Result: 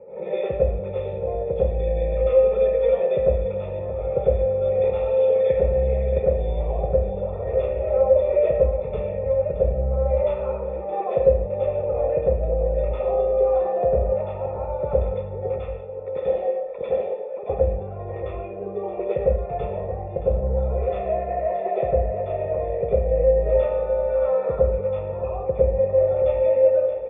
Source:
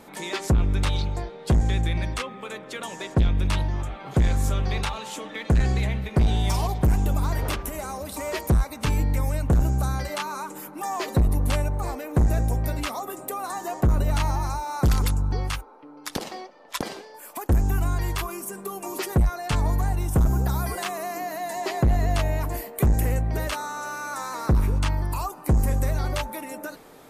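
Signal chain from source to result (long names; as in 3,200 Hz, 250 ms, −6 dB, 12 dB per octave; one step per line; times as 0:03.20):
high-pass filter 60 Hz
parametric band 280 Hz −4 dB 2.8 octaves
hum removal 103.8 Hz, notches 33
downward compressor, threshold −31 dBFS, peak gain reduction 13 dB
formant resonators in series e
phaser with its sweep stopped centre 680 Hz, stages 4
single-tap delay 623 ms −11.5 dB
convolution reverb RT60 0.70 s, pre-delay 95 ms, DRR −8.5 dB
one half of a high-frequency compander decoder only
level +6.5 dB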